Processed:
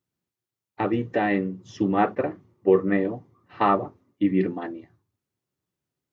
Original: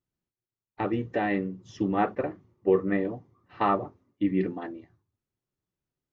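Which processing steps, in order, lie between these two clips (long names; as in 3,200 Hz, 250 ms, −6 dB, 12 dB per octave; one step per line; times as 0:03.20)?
high-pass filter 86 Hz
level +4 dB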